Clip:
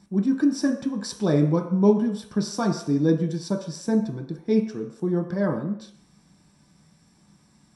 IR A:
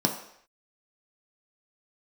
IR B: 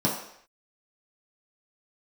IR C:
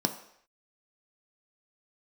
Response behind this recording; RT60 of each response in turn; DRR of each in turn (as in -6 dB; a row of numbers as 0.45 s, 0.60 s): A; no single decay rate, no single decay rate, no single decay rate; 1.5 dB, -5.5 dB, 5.5 dB